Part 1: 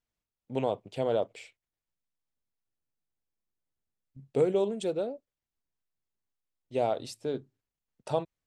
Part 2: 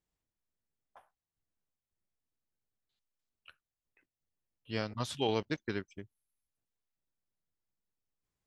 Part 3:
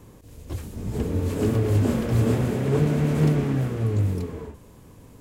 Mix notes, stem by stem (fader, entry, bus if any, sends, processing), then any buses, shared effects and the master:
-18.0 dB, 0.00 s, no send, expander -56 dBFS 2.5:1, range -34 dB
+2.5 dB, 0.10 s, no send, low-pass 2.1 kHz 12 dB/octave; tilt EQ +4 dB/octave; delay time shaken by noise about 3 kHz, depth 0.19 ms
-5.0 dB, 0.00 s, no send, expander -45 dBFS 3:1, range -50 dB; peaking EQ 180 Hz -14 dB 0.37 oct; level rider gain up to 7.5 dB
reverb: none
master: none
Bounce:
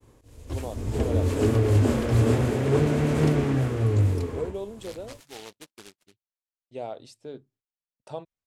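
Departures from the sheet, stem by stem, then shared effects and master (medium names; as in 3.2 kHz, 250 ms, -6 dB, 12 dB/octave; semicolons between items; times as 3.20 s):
stem 1 -18.0 dB -> -7.0 dB; stem 2 +2.5 dB -> -7.0 dB; master: extra low-pass 11 kHz 12 dB/octave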